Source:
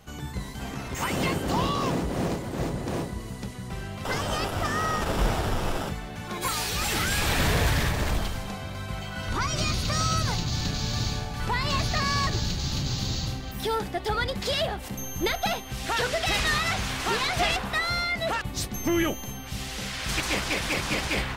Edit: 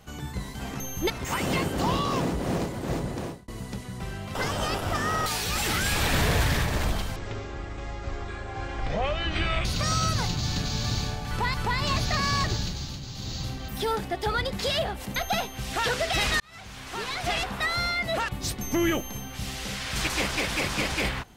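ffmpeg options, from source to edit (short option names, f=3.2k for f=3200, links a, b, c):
-filter_complex "[0:a]asplit=12[a][b][c][d][e][f][g][h][i][j][k][l];[a]atrim=end=0.802[m];[b]atrim=start=14.988:end=15.292[n];[c]atrim=start=0.798:end=3.18,asetpts=PTS-STARTPTS,afade=t=out:st=2.012:d=0.37[o];[d]atrim=start=3.18:end=4.962,asetpts=PTS-STARTPTS,afade=t=in:d=0.004:c=hsin[p];[e]atrim=start=6.518:end=8.424[q];[f]atrim=start=8.42:end=9.74,asetpts=PTS-STARTPTS,asetrate=23373,aresample=44100[r];[g]atrim=start=9.736:end=11.632[s];[h]atrim=start=11.368:end=12.82,asetpts=PTS-STARTPTS,afade=t=out:st=0.962:d=0.49:silence=0.334965[t];[i]atrim=start=12.82:end=12.95,asetpts=PTS-STARTPTS,volume=-9.5dB[u];[j]atrim=start=12.95:end=14.992,asetpts=PTS-STARTPTS,afade=t=in:d=0.49:silence=0.334965[v];[k]atrim=start=15.288:end=16.53,asetpts=PTS-STARTPTS,afade=t=out:st=1.238:d=0.004:c=hsin[w];[l]atrim=start=16.53,asetpts=PTS-STARTPTS,afade=t=in:d=1.34[x];[m][n]acrossfade=d=0.004:c1=hsin:c2=hsin[y];[o][p]concat=n=2:v=0:a=1[z];[y][z]acrossfade=d=0.004:c1=hsin:c2=hsin[aa];[aa][q]acrossfade=d=0.004:c1=hsin:c2=hsin[ab];[ab][r]acrossfade=d=0.004:c1=hsin:c2=hsin[ac];[ac][s]acrossfade=d=0.004:c1=hsin:c2=hsin[ad];[t][u][v]concat=n=3:v=0:a=1[ae];[ad][ae]acrossfade=d=0.004:c1=hsin:c2=hsin[af];[w][x]concat=n=2:v=0:a=1[ag];[af][ag]acrossfade=d=0.004:c1=hsin:c2=hsin"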